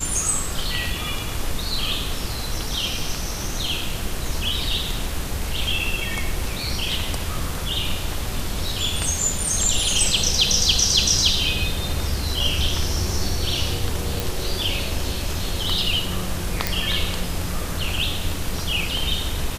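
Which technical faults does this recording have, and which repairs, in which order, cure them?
14.20 s: pop
16.67 s: pop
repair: de-click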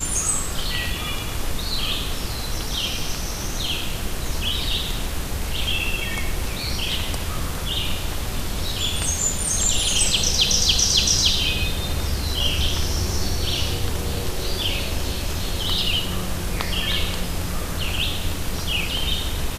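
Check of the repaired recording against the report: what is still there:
nothing left

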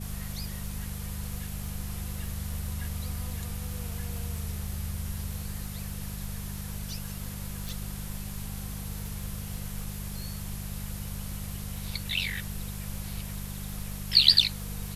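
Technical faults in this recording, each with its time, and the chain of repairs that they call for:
crackle 26 per s -37 dBFS
hum 50 Hz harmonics 4 -38 dBFS
7.69 s: pop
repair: de-click; de-hum 50 Hz, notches 4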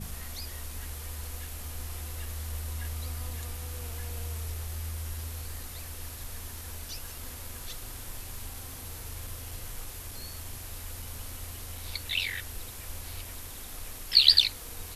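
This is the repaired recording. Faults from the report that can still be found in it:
nothing left

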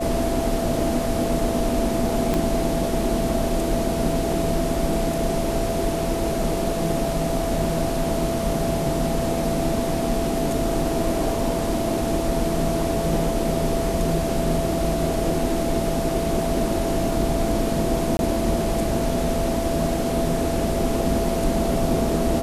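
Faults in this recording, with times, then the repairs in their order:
whine 670 Hz -26 dBFS
2.34 s: pop -9 dBFS
18.17–18.19 s: dropout 21 ms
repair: de-click; band-stop 670 Hz, Q 30; interpolate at 18.17 s, 21 ms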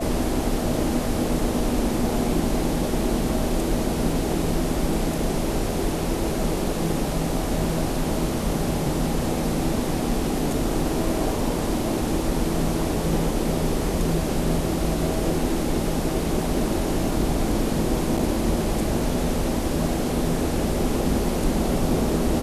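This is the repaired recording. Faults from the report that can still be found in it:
2.34 s: pop

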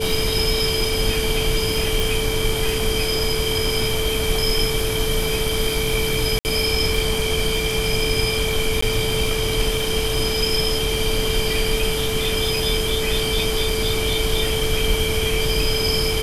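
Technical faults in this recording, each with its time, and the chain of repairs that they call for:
crackle 39 per s -24 dBFS
whine 440 Hz -24 dBFS
2.00 s: pop
6.39–6.45 s: dropout 59 ms
8.81–8.82 s: dropout 14 ms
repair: de-click; band-stop 440 Hz, Q 30; interpolate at 6.39 s, 59 ms; interpolate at 8.81 s, 14 ms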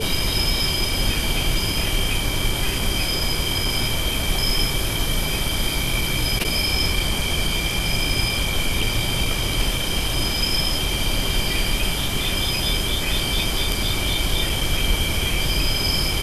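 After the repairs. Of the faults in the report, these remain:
nothing left

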